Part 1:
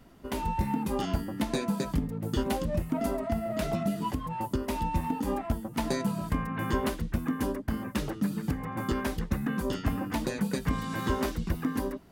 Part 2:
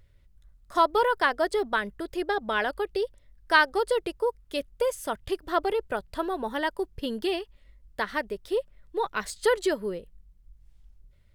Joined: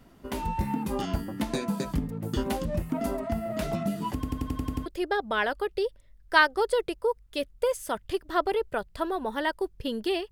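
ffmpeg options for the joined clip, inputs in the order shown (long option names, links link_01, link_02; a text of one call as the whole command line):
ffmpeg -i cue0.wav -i cue1.wav -filter_complex "[0:a]apad=whole_dur=10.31,atrim=end=10.31,asplit=8[link_01][link_02][link_03][link_04][link_05][link_06][link_07][link_08];[link_01]atrim=end=4.232[link_09];[link_02]atrim=start=4.138:end=4.232[link_10];[link_03]atrim=start=4.138:end=4.232[link_11];[link_04]atrim=start=4.138:end=4.232[link_12];[link_05]atrim=start=4.138:end=4.232[link_13];[link_06]atrim=start=4.138:end=4.232[link_14];[link_07]atrim=start=4.138:end=4.232[link_15];[link_08]atrim=start=4.138:end=4.232[link_16];[1:a]atrim=start=2.038:end=7.49[link_17];[link_09][link_10]acrossfade=duration=0.004:curve1=hsin:curve2=hsin[link_18];[link_18][link_11]acrossfade=duration=0.004:curve1=hsin:curve2=hsin[link_19];[link_19][link_12]acrossfade=duration=0.004:curve1=hsin:curve2=hsin[link_20];[link_20][link_13]acrossfade=duration=0.004:curve1=hsin:curve2=hsin[link_21];[link_21][link_14]acrossfade=duration=0.004:curve1=hsin:curve2=hsin[link_22];[link_22][link_15]acrossfade=duration=0.004:curve1=hsin:curve2=hsin[link_23];[link_23][link_16]acrossfade=duration=0.004:curve1=hsin:curve2=hsin[link_24];[link_24][link_17]acrossfade=duration=0.004:curve1=hsin:curve2=hsin" out.wav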